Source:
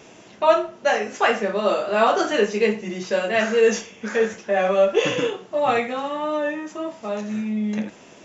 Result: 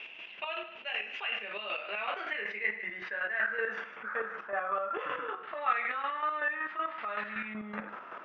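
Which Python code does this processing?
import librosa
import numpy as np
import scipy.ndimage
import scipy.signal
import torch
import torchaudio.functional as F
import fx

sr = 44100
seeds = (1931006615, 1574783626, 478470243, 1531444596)

y = fx.band_shelf(x, sr, hz=2800.0, db=15.0, octaves=1.7, at=(5.43, 7.54))
y = fx.rider(y, sr, range_db=3, speed_s=2.0)
y = fx.filter_sweep_bandpass(y, sr, from_hz=2700.0, to_hz=1300.0, start_s=1.58, end_s=4.18, q=6.2)
y = fx.chopper(y, sr, hz=5.3, depth_pct=65, duty_pct=35)
y = fx.air_absorb(y, sr, metres=350.0)
y = y + 10.0 ** (-23.5 / 20.0) * np.pad(y, (int(152 * sr / 1000.0), 0))[:len(y)]
y = fx.env_flatten(y, sr, amount_pct=50)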